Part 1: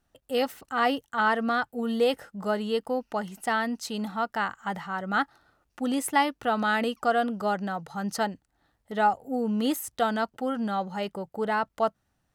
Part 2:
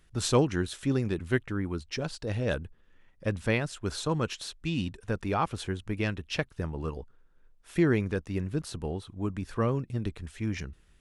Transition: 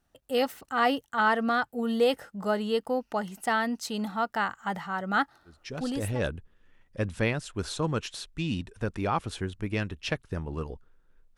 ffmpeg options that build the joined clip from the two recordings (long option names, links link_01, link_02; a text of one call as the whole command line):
ffmpeg -i cue0.wav -i cue1.wav -filter_complex "[0:a]apad=whole_dur=11.37,atrim=end=11.37,atrim=end=6.22,asetpts=PTS-STARTPTS[link_01];[1:a]atrim=start=1.71:end=7.64,asetpts=PTS-STARTPTS[link_02];[link_01][link_02]acrossfade=duration=0.78:curve1=qsin:curve2=qsin" out.wav